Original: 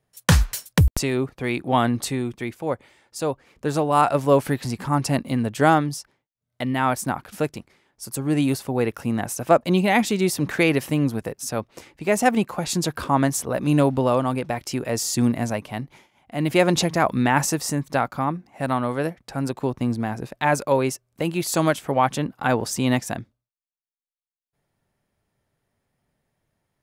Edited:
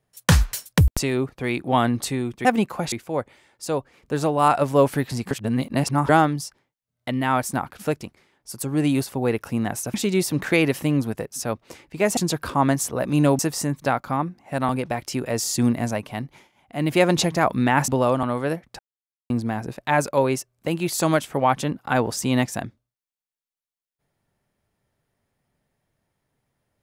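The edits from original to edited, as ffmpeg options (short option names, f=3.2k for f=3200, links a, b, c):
-filter_complex "[0:a]asplit=13[a][b][c][d][e][f][g][h][i][j][k][l][m];[a]atrim=end=2.452[n];[b]atrim=start=12.238:end=12.712[o];[c]atrim=start=2.448:end=4.842[p];[d]atrim=start=4.838:end=5.622,asetpts=PTS-STARTPTS,areverse[q];[e]atrim=start=5.618:end=9.472[r];[f]atrim=start=10.008:end=12.242[s];[g]atrim=start=12.708:end=13.932[t];[h]atrim=start=17.468:end=18.772[u];[i]atrim=start=14.278:end=17.472[v];[j]atrim=start=13.928:end=14.282[w];[k]atrim=start=18.768:end=19.33,asetpts=PTS-STARTPTS,afade=t=out:st=0.558:d=0.004:c=hsin[x];[l]atrim=start=19.33:end=19.84,asetpts=PTS-STARTPTS,volume=0[y];[m]atrim=start=19.84,asetpts=PTS-STARTPTS,afade=t=in:d=0.004:c=hsin[z];[n][o]acrossfade=d=0.004:c1=hsin:c2=hsin[aa];[aa][p]acrossfade=d=0.004:c1=hsin:c2=hsin[ab];[ab][q]acrossfade=d=0.004:c1=hsin:c2=hsin[ac];[ac][r]acrossfade=d=0.004:c1=hsin:c2=hsin[ad];[ad][s]acrossfade=d=0.004:c1=hsin:c2=hsin[ae];[ae][t]acrossfade=d=0.004:c1=hsin:c2=hsin[af];[af][u]acrossfade=d=0.004:c1=hsin:c2=hsin[ag];[ag][v]acrossfade=d=0.004:c1=hsin:c2=hsin[ah];[ah][w]acrossfade=d=0.004:c1=hsin:c2=hsin[ai];[x][y][z]concat=n=3:v=0:a=1[aj];[ai][aj]acrossfade=d=0.004:c1=hsin:c2=hsin"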